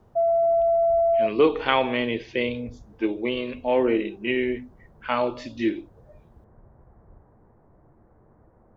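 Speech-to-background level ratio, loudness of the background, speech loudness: -4.0 dB, -21.5 LUFS, -25.5 LUFS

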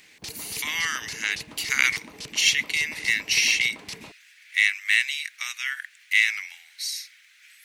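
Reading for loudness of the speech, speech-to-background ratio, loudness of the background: -23.5 LUFS, 15.0 dB, -38.5 LUFS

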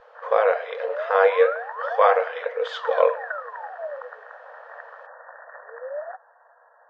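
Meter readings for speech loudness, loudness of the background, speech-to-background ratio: -22.0 LUFS, -34.5 LUFS, 12.5 dB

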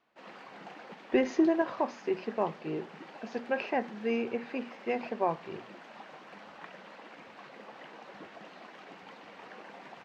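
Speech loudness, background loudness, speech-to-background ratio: -32.5 LUFS, -49.0 LUFS, 16.5 dB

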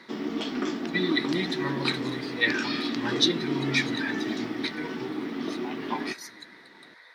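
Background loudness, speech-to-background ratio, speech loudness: -31.5 LUFS, 1.5 dB, -30.0 LUFS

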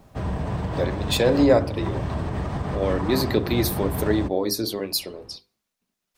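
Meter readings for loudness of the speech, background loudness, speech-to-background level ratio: -23.5 LUFS, -28.5 LUFS, 5.0 dB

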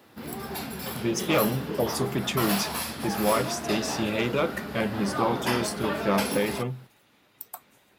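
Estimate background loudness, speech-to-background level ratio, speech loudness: -31.5 LUFS, 3.0 dB, -28.5 LUFS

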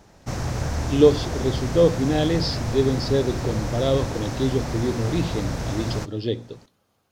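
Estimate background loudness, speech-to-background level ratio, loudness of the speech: -29.0 LUFS, 5.5 dB, -23.5 LUFS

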